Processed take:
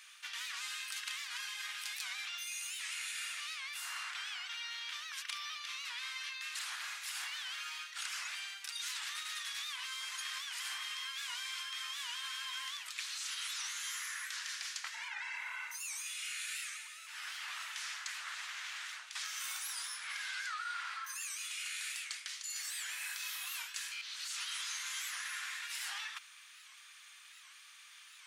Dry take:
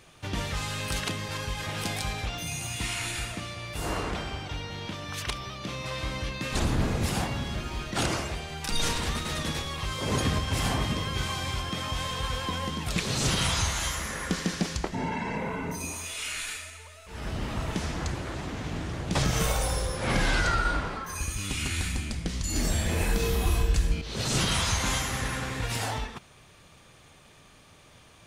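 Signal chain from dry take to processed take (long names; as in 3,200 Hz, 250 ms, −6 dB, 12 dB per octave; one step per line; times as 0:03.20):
inverse Chebyshev high-pass filter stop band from 410 Hz, stop band 60 dB
reversed playback
downward compressor 6 to 1, threshold −41 dBFS, peak gain reduction 14 dB
reversed playback
wow of a warped record 78 rpm, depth 160 cents
level +2 dB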